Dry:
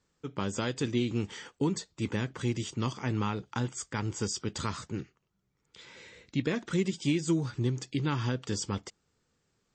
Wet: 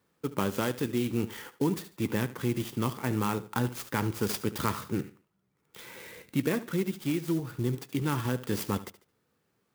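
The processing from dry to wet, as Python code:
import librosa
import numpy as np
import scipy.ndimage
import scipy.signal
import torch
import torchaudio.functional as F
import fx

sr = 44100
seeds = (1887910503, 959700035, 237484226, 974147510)

p1 = scipy.signal.sosfilt(scipy.signal.butter(2, 86.0, 'highpass', fs=sr, output='sos'), x)
p2 = fx.high_shelf(p1, sr, hz=2800.0, db=-5.0)
p3 = p2 + fx.echo_feedback(p2, sr, ms=73, feedback_pct=27, wet_db=-14.5, dry=0)
p4 = fx.rider(p3, sr, range_db=5, speed_s=0.5)
p5 = fx.low_shelf(p4, sr, hz=130.0, db=-5.5)
p6 = fx.level_steps(p5, sr, step_db=18)
p7 = p5 + F.gain(torch.from_numpy(p6), -1.5).numpy()
y = fx.clock_jitter(p7, sr, seeds[0], jitter_ms=0.041)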